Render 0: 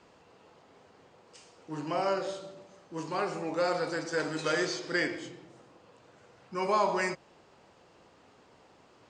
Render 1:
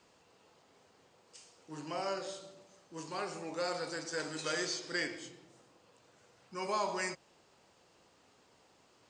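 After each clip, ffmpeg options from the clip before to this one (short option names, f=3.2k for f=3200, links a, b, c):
-af "highshelf=f=3.9k:g=12,volume=-8dB"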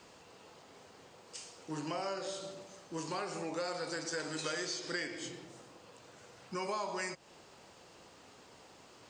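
-af "acompressor=threshold=-45dB:ratio=4,volume=8.5dB"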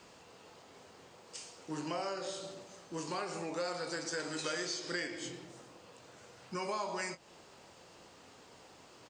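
-filter_complex "[0:a]asplit=2[a][b];[b]adelay=23,volume=-12dB[c];[a][c]amix=inputs=2:normalize=0"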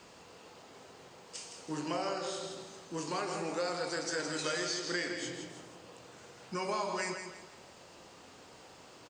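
-af "aecho=1:1:164|328|492|656:0.422|0.148|0.0517|0.0181,volume=2dB"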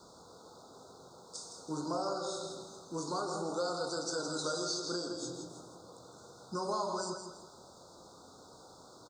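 -af "asuperstop=centerf=2300:order=20:qfactor=1.1"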